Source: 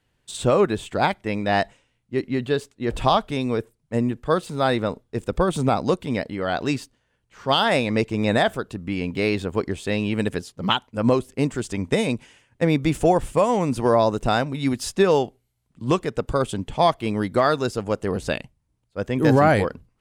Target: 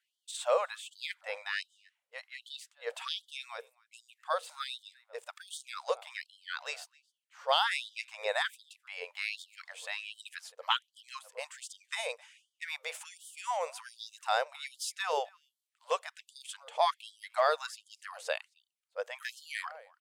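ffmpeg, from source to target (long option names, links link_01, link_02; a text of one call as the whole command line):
ffmpeg -i in.wav -filter_complex "[0:a]asplit=2[link_01][link_02];[link_02]adelay=262.4,volume=-24dB,highshelf=frequency=4000:gain=-5.9[link_03];[link_01][link_03]amix=inputs=2:normalize=0,afftfilt=real='re*gte(b*sr/1024,430*pow(3000/430,0.5+0.5*sin(2*PI*1.3*pts/sr)))':imag='im*gte(b*sr/1024,430*pow(3000/430,0.5+0.5*sin(2*PI*1.3*pts/sr)))':win_size=1024:overlap=0.75,volume=-7dB" out.wav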